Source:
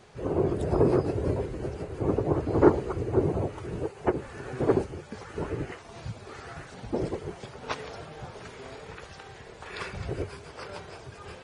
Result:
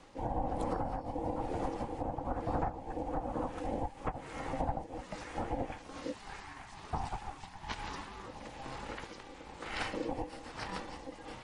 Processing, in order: 6.14–8.26 s: high-pass 330 Hz 24 dB/octave; compression 20:1, threshold -30 dBFS, peak gain reduction 19.5 dB; rotary cabinet horn 1.1 Hz; ring modulator 400 Hz; trim +3.5 dB

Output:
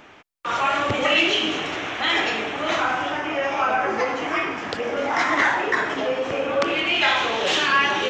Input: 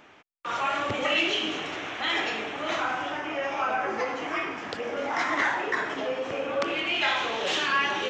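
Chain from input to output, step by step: bass shelf 65 Hz +7 dB; trim +6 dB

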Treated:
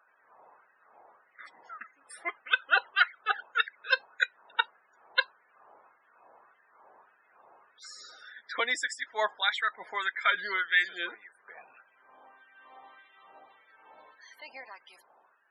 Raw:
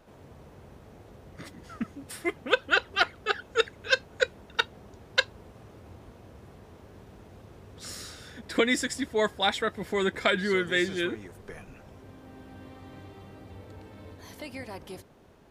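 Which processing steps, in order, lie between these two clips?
loudest bins only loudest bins 64; LFO high-pass sine 1.7 Hz 810–1800 Hz; trim -3 dB

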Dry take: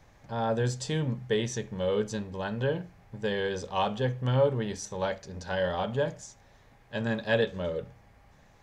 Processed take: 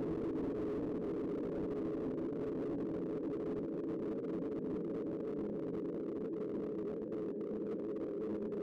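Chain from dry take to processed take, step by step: Butterworth band-pass 310 Hz, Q 2.2; Paulstretch 43×, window 1.00 s, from 2.85 s; slew-rate limiter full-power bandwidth 2.3 Hz; trim +8 dB

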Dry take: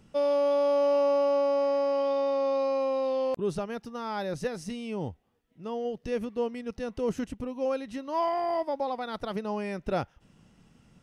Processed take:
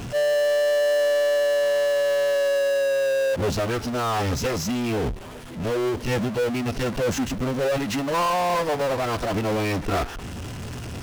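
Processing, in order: formant-preserving pitch shift -11.5 st; power-law waveshaper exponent 0.35

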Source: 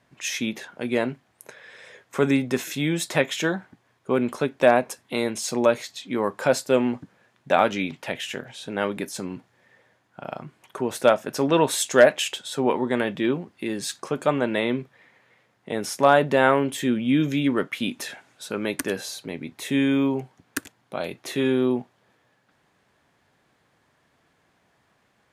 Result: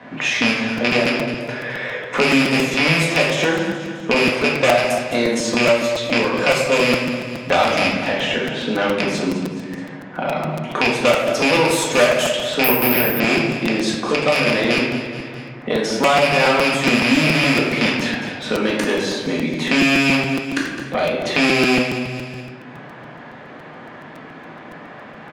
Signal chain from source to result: rattle on loud lows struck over -28 dBFS, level -8 dBFS; Chebyshev shaper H 6 -16 dB, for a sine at -2.5 dBFS; high-pass 150 Hz 12 dB/octave; in parallel at -0.5 dB: compression, threshold -29 dBFS, peak gain reduction 19 dB; on the sum: simulated room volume 300 m³, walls mixed, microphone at 1.9 m; level-controlled noise filter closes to 2.4 kHz, open at -7.5 dBFS; on a send: feedback delay 211 ms, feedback 35%, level -14.5 dB; 12.64–13.20 s: on the sum: careless resampling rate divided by 3×, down filtered, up zero stuff; crackling interface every 0.14 s, samples 256, repeat, from 0.77 s; three bands compressed up and down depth 70%; trim -4 dB

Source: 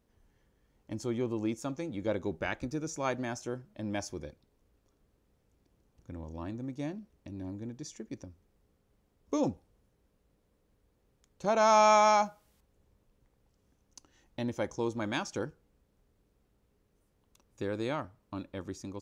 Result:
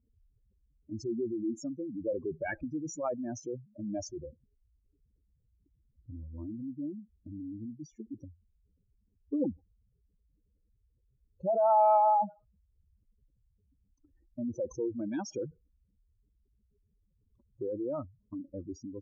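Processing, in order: spectral contrast enhancement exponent 3.5; level-controlled noise filter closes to 650 Hz, open at -33.5 dBFS

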